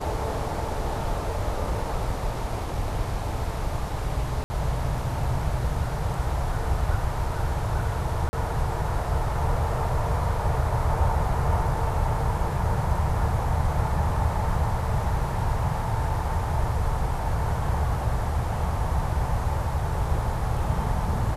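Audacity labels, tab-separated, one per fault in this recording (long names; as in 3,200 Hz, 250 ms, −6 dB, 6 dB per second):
4.440000	4.500000	drop-out 60 ms
8.290000	8.330000	drop-out 40 ms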